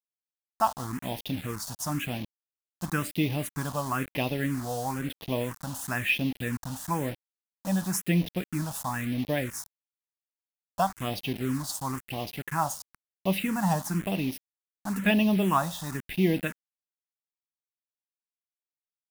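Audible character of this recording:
a quantiser's noise floor 6 bits, dither none
phaser sweep stages 4, 1 Hz, lowest notch 360–1,400 Hz

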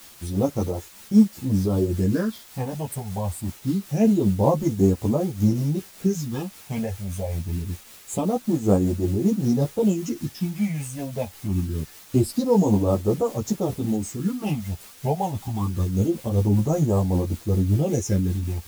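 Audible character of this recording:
phaser sweep stages 6, 0.25 Hz, lowest notch 310–4,200 Hz
a quantiser's noise floor 8 bits, dither triangular
tremolo triangle 5.2 Hz, depth 40%
a shimmering, thickened sound

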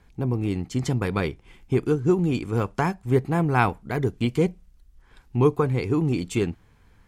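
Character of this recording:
background noise floor −57 dBFS
spectral slope −6.0 dB per octave

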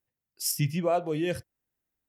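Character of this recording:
background noise floor −89 dBFS
spectral slope −4.5 dB per octave

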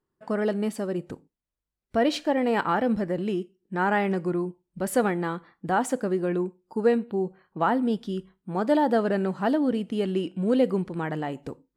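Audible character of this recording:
background noise floor −86 dBFS
spectral slope −5.5 dB per octave

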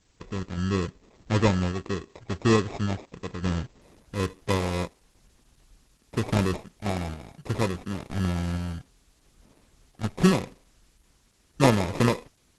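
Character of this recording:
aliases and images of a low sample rate 1,500 Hz, jitter 0%
sample-and-hold tremolo, depth 55%
a quantiser's noise floor 12 bits, dither triangular
Opus

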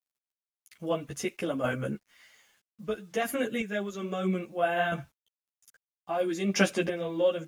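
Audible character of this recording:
chopped level 0.61 Hz, depth 60%, duty 20%
a quantiser's noise floor 12 bits, dither none
a shimmering, thickened sound

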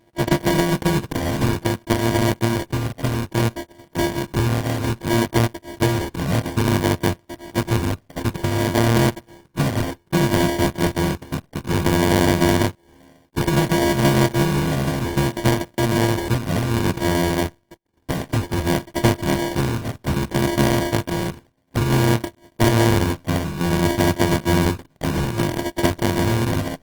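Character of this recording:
a buzz of ramps at a fixed pitch in blocks of 128 samples
phaser sweep stages 6, 0.59 Hz, lowest notch 440–3,700 Hz
aliases and images of a low sample rate 1,300 Hz, jitter 0%
Opus

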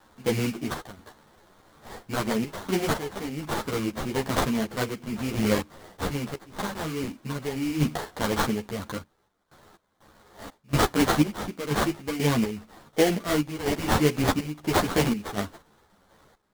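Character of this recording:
a quantiser's noise floor 10 bits, dither triangular
sample-and-hold tremolo 4.1 Hz, depth 95%
aliases and images of a low sample rate 2,600 Hz, jitter 20%
a shimmering, thickened sound

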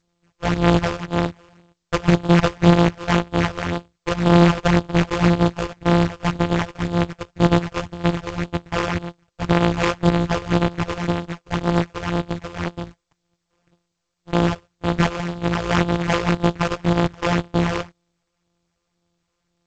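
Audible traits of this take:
a buzz of ramps at a fixed pitch in blocks of 256 samples
phaser sweep stages 8, 1.9 Hz, lowest notch 210–3,900 Hz
aliases and images of a low sample rate 4,000 Hz, jitter 20%
G.722

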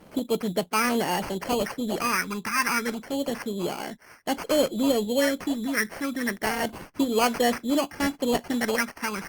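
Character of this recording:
phaser sweep stages 4, 0.3 Hz, lowest notch 610–3,600 Hz
aliases and images of a low sample rate 3,700 Hz, jitter 0%
Opus

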